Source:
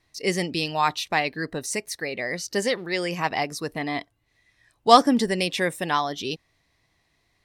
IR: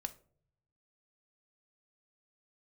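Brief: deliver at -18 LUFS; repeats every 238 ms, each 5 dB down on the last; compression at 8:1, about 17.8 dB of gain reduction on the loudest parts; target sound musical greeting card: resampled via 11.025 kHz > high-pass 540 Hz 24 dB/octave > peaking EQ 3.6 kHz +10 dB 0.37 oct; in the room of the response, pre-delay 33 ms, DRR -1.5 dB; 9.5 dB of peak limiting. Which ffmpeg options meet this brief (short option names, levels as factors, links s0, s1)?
-filter_complex "[0:a]acompressor=threshold=0.0447:ratio=8,alimiter=level_in=1.19:limit=0.0631:level=0:latency=1,volume=0.841,aecho=1:1:238|476|714|952|1190|1428|1666:0.562|0.315|0.176|0.0988|0.0553|0.031|0.0173,asplit=2[s0][s1];[1:a]atrim=start_sample=2205,adelay=33[s2];[s1][s2]afir=irnorm=-1:irlink=0,volume=1.41[s3];[s0][s3]amix=inputs=2:normalize=0,aresample=11025,aresample=44100,highpass=f=540:w=0.5412,highpass=f=540:w=1.3066,equalizer=f=3600:t=o:w=0.37:g=10,volume=4.47"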